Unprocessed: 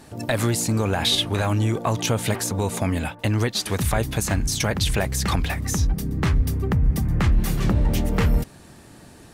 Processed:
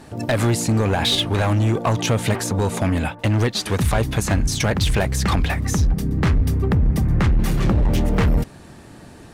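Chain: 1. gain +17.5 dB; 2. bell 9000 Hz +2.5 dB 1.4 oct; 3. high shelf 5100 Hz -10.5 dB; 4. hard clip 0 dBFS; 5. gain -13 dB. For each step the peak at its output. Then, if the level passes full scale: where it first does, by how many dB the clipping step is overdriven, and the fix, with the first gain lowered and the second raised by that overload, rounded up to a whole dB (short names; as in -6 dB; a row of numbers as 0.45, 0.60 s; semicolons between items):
+6.0, +7.5, +6.0, 0.0, -13.0 dBFS; step 1, 6.0 dB; step 1 +11.5 dB, step 5 -7 dB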